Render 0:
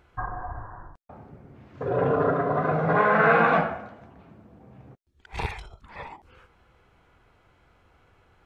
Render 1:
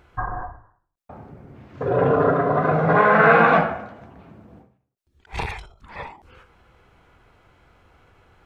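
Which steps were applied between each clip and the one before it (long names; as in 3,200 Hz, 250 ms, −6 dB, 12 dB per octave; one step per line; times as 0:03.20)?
every ending faded ahead of time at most 110 dB per second
level +5 dB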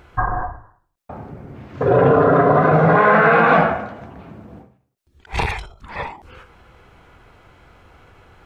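brickwall limiter −11.5 dBFS, peak gain reduction 9 dB
level +7 dB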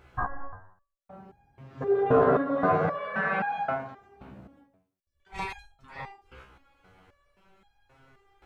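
step-sequenced resonator 3.8 Hz 65–820 Hz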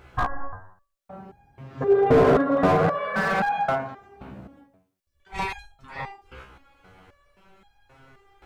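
slew-rate limiting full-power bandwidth 55 Hz
level +6 dB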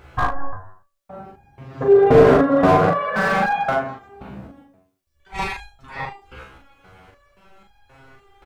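ambience of single reflections 40 ms −3.5 dB, 75 ms −17 dB
level +3 dB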